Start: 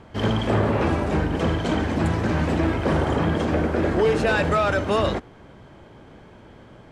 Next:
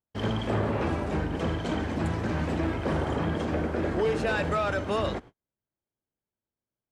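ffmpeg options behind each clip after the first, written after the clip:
ffmpeg -i in.wav -af "agate=range=-42dB:threshold=-37dB:ratio=16:detection=peak,volume=-6.5dB" out.wav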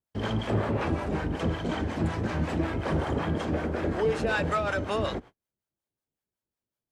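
ffmpeg -i in.wav -filter_complex "[0:a]acrossover=split=580[link_01][link_02];[link_01]aeval=exprs='val(0)*(1-0.7/2+0.7/2*cos(2*PI*5.4*n/s))':channel_layout=same[link_03];[link_02]aeval=exprs='val(0)*(1-0.7/2-0.7/2*cos(2*PI*5.4*n/s))':channel_layout=same[link_04];[link_03][link_04]amix=inputs=2:normalize=0,volume=3dB" out.wav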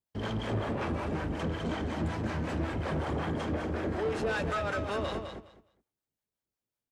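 ffmpeg -i in.wav -af "asoftclip=type=tanh:threshold=-24dB,aecho=1:1:207|414|621:0.447|0.0804|0.0145,volume=-2.5dB" out.wav

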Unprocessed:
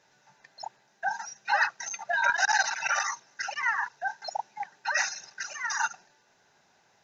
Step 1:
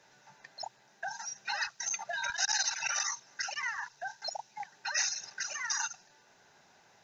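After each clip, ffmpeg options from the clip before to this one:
ffmpeg -i in.wav -filter_complex "[0:a]acrossover=split=130|3000[link_01][link_02][link_03];[link_02]acompressor=threshold=-42dB:ratio=4[link_04];[link_01][link_04][link_03]amix=inputs=3:normalize=0,volume=2.5dB" out.wav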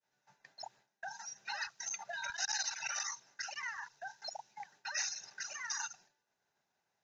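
ffmpeg -i in.wav -af "agate=range=-33dB:threshold=-52dB:ratio=3:detection=peak,volume=-6dB" out.wav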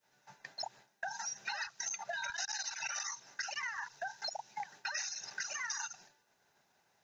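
ffmpeg -i in.wav -af "acompressor=threshold=-47dB:ratio=6,volume=10dB" out.wav

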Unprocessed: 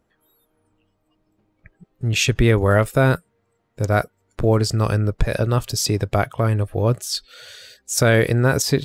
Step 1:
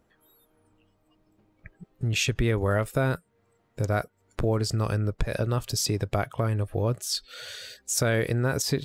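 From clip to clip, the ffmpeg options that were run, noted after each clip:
ffmpeg -i in.wav -af "acompressor=threshold=-30dB:ratio=2,volume=1dB" out.wav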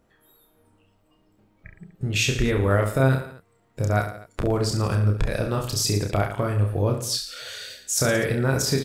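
ffmpeg -i in.wav -af "aecho=1:1:30|67.5|114.4|173|246.2:0.631|0.398|0.251|0.158|0.1,volume=1.5dB" out.wav

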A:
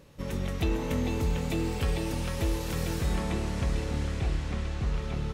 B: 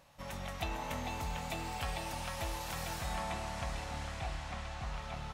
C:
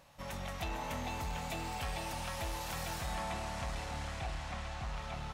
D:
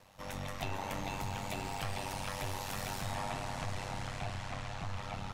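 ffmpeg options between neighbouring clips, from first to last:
ffmpeg -i in.wav -af "lowshelf=frequency=550:width_type=q:width=3:gain=-8.5,volume=-3.5dB" out.wav
ffmpeg -i in.wav -af "asoftclip=type=tanh:threshold=-32.5dB,volume=1.5dB" out.wav
ffmpeg -i in.wav -af "aeval=exprs='val(0)*sin(2*PI*48*n/s)':channel_layout=same,volume=3.5dB" out.wav

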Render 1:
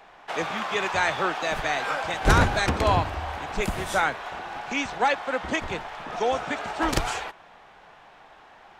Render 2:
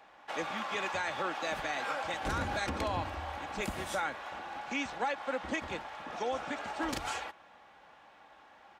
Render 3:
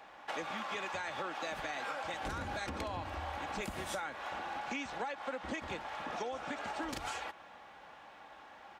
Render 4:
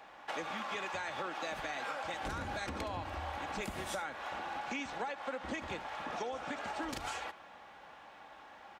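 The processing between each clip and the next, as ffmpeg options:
ffmpeg -i in.wav -af "highpass=64,aecho=1:1:3.6:0.36,alimiter=limit=-16.5dB:level=0:latency=1:release=89,volume=-7.5dB" out.wav
ffmpeg -i in.wav -af "acompressor=threshold=-40dB:ratio=6,volume=3.5dB" out.wav
ffmpeg -i in.wav -af "aecho=1:1:75:0.141" out.wav

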